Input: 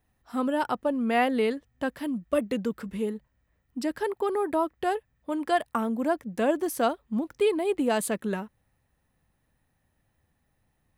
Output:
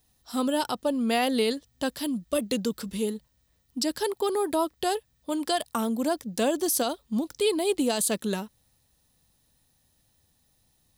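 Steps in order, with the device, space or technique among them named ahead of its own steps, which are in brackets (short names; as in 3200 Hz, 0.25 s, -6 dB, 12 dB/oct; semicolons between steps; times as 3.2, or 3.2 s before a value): over-bright horn tweeter (resonant high shelf 2900 Hz +12 dB, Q 1.5; limiter -16.5 dBFS, peak gain reduction 9.5 dB); gain +1 dB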